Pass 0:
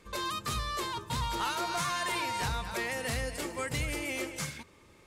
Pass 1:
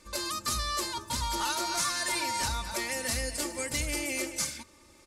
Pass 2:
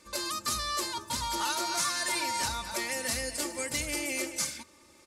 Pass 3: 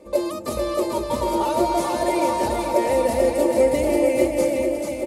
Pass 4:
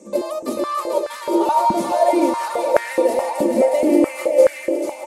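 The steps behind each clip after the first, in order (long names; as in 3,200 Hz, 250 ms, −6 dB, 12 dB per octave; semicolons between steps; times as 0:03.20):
flat-topped bell 7,200 Hz +8.5 dB; comb filter 3.4 ms, depth 61%; level −1.5 dB
high-pass filter 130 Hz 6 dB per octave
drawn EQ curve 150 Hz 0 dB, 600 Hz +13 dB, 1,500 Hz −15 dB, 2,200 Hz −8 dB, 5,800 Hz −18 dB, 11,000 Hz −10 dB; on a send: bouncing-ball delay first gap 440 ms, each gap 0.85×, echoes 5; on the sum: level +8.5 dB
noise in a band 5,700–8,700 Hz −55 dBFS; high-pass on a step sequencer 4.7 Hz 210–1,600 Hz; level −1.5 dB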